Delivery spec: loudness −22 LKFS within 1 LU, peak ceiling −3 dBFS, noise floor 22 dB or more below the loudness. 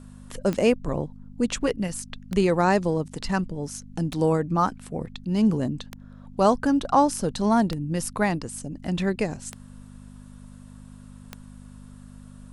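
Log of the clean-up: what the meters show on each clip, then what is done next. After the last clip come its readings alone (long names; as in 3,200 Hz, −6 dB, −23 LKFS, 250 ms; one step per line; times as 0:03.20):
number of clicks 7; mains hum 50 Hz; hum harmonics up to 250 Hz; level of the hum −45 dBFS; integrated loudness −25.0 LKFS; sample peak −7.0 dBFS; target loudness −22.0 LKFS
→ click removal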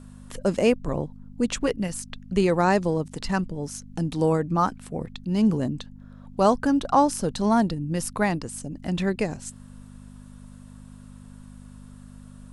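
number of clicks 0; mains hum 50 Hz; hum harmonics up to 250 Hz; level of the hum −45 dBFS
→ hum removal 50 Hz, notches 5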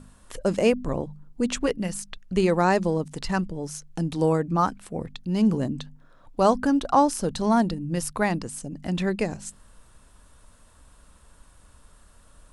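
mains hum none found; integrated loudness −25.5 LKFS; sample peak −7.0 dBFS; target loudness −22.0 LKFS
→ level +3.5 dB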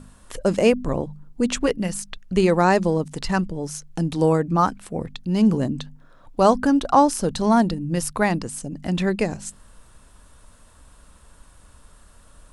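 integrated loudness −22.0 LKFS; sample peak −3.5 dBFS; background noise floor −51 dBFS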